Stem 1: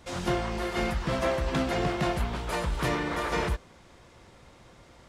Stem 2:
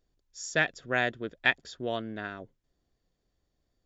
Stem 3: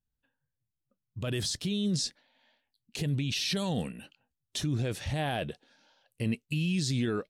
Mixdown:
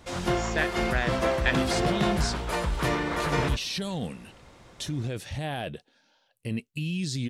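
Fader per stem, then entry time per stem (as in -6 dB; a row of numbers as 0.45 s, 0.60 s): +1.5 dB, -2.0 dB, -1.0 dB; 0.00 s, 0.00 s, 0.25 s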